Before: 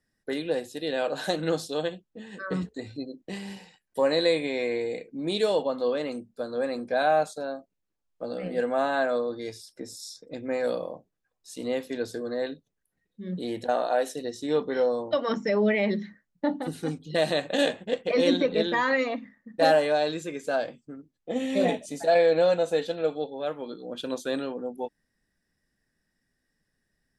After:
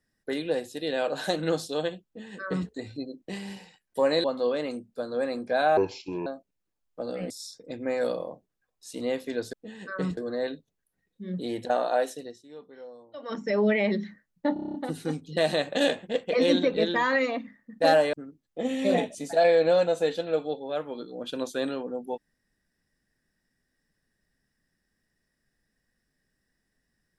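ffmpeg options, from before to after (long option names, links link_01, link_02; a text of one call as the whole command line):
ffmpeg -i in.wav -filter_complex "[0:a]asplit=17[link_01][link_02][link_03][link_04][link_05][link_06][link_07][link_08][link_09][link_10][link_11][link_12][link_13][link_14][link_15][link_16][link_17];[link_01]atrim=end=4.242[link_18];[link_02]atrim=start=5.648:end=7.184[link_19];[link_03]atrim=start=7.18:end=7.49,asetpts=PTS-STARTPTS,asetrate=27783,aresample=44100[link_20];[link_04]atrim=start=7.486:end=8.532[link_21];[link_05]atrim=start=9.928:end=12.162[link_22];[link_06]atrim=start=2.048:end=2.692[link_23];[link_07]atrim=start=12.158:end=14.42,asetpts=PTS-STARTPTS,afade=type=out:start_time=1.812:duration=0.45:silence=0.1[link_24];[link_08]atrim=start=14.42:end=15.13,asetpts=PTS-STARTPTS,volume=-20dB[link_25];[link_09]atrim=start=15.13:end=16.552,asetpts=PTS-STARTPTS,afade=type=in:duration=0.45:silence=0.1[link_26];[link_10]atrim=start=16.518:end=16.552[link_27];[link_11]atrim=start=16.518:end=16.552[link_28];[link_12]atrim=start=16.518:end=16.552[link_29];[link_13]atrim=start=16.518:end=16.552[link_30];[link_14]atrim=start=16.518:end=16.552[link_31];[link_15]atrim=start=16.518:end=16.552[link_32];[link_16]atrim=start=16.518:end=19.912[link_33];[link_17]atrim=start=20.838[link_34];[link_18][link_19]acrossfade=duration=0.004:curve1=hsin:curve2=hsin[link_35];[link_35][link_20]acrossfade=duration=0.004:curve1=hsin:curve2=hsin[link_36];[link_36][link_21]acrossfade=duration=0.004:curve1=hsin:curve2=hsin[link_37];[link_37][link_22]acrossfade=duration=0.004:curve1=hsin:curve2=hsin[link_38];[link_38][link_23]acrossfade=duration=0.004:curve1=hsin:curve2=hsin[link_39];[link_24][link_25][link_26]concat=n=3:v=0:a=1[link_40];[link_39][link_40]acrossfade=duration=0.004:curve1=hsin:curve2=hsin[link_41];[link_41][link_27]acrossfade=duration=0.004:curve1=hsin:curve2=hsin[link_42];[link_42][link_28]acrossfade=duration=0.004:curve1=hsin:curve2=hsin[link_43];[link_43][link_29]acrossfade=duration=0.004:curve1=hsin:curve2=hsin[link_44];[link_44][link_30]acrossfade=duration=0.004:curve1=hsin:curve2=hsin[link_45];[link_45][link_31]acrossfade=duration=0.004:curve1=hsin:curve2=hsin[link_46];[link_46][link_32]acrossfade=duration=0.004:curve1=hsin:curve2=hsin[link_47];[link_47][link_33]acrossfade=duration=0.004:curve1=hsin:curve2=hsin[link_48];[link_48][link_34]acrossfade=duration=0.004:curve1=hsin:curve2=hsin" out.wav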